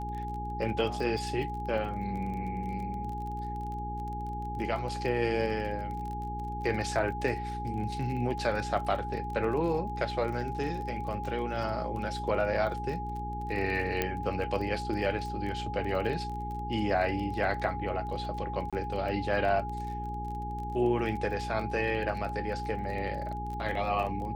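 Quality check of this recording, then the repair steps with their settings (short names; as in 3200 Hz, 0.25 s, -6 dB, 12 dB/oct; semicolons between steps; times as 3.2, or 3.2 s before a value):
crackle 28/s -37 dBFS
hum 60 Hz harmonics 7 -38 dBFS
tone 830 Hz -36 dBFS
14.02 pop -13 dBFS
18.7–18.73 gap 26 ms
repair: de-click; de-hum 60 Hz, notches 7; notch 830 Hz, Q 30; interpolate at 18.7, 26 ms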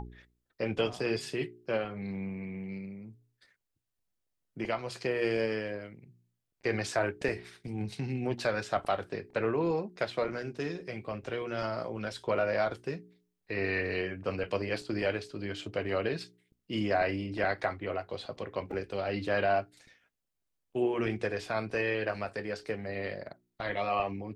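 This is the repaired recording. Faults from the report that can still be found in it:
none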